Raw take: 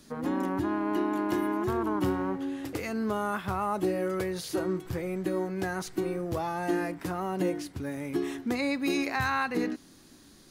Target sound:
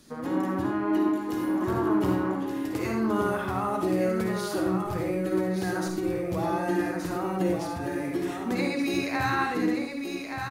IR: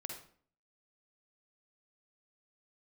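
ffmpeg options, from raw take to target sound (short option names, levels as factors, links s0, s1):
-filter_complex "[0:a]asettb=1/sr,asplit=3[s0][s1][s2];[s0]atrim=end=1.084[s3];[s1]atrim=start=1.08:end=1.62,asetpts=PTS-STARTPTS,afade=t=in:d=0.004:c=qsin,afade=t=out:st=0.536:d=0.004:c=qsin,acrossover=split=160|3000[s4][s5][s6];[s5]acompressor=threshold=0.0251:ratio=6[s7];[s4][s7][s6]amix=inputs=3:normalize=0[s8];[s2]atrim=start=1.616[s9];[s3][s8]acrossfade=d=0.004:c1=hsin:c2=qsin[s10];[s10][s9]acrossfade=d=0.004:c1=qsin:c2=hsin,aecho=1:1:1174:0.501[s11];[1:a]atrim=start_sample=2205,asetrate=40131,aresample=44100[s12];[s11][s12]afir=irnorm=-1:irlink=0,volume=1.41"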